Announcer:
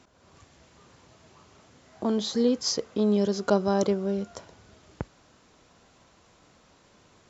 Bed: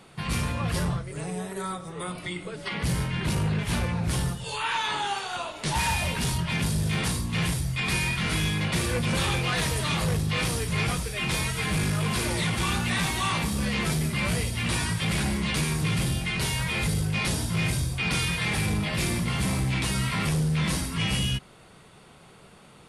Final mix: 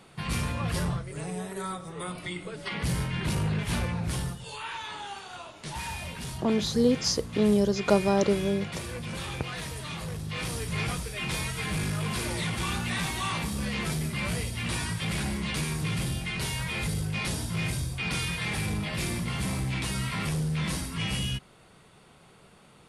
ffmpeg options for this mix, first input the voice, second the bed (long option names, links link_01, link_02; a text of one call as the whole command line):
ffmpeg -i stem1.wav -i stem2.wav -filter_complex "[0:a]adelay=4400,volume=0.5dB[link_01];[1:a]volume=4dB,afade=type=out:start_time=3.8:duration=0.98:silence=0.398107,afade=type=in:start_time=10.17:duration=0.51:silence=0.501187[link_02];[link_01][link_02]amix=inputs=2:normalize=0" out.wav